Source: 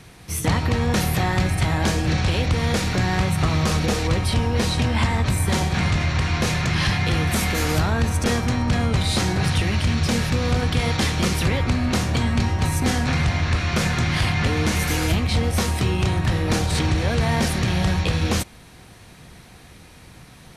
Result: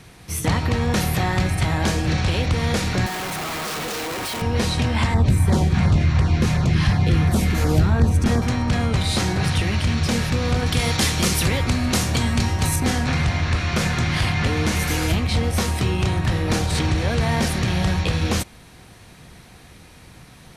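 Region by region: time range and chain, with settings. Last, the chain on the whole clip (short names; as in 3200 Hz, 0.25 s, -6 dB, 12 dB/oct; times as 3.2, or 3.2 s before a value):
3.06–4.42 HPF 380 Hz + bell 550 Hz -5.5 dB 0.31 oct + Schmitt trigger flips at -36 dBFS
5.14–8.42 tilt shelf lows +5 dB, about 850 Hz + LFO notch saw down 2.8 Hz 260–3400 Hz
10.66–12.76 high shelf 5300 Hz +10.5 dB + requantised 12-bit, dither triangular
whole clip: dry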